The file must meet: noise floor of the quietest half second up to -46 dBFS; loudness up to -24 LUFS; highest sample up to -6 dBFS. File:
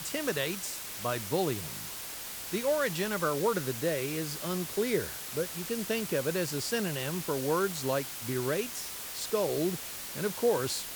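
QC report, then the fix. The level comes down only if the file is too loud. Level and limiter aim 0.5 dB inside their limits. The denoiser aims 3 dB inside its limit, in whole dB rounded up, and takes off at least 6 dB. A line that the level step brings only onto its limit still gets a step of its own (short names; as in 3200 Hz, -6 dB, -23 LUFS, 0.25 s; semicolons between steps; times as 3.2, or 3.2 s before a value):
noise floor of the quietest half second -41 dBFS: fail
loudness -31.5 LUFS: OK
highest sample -16.5 dBFS: OK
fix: denoiser 8 dB, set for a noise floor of -41 dBFS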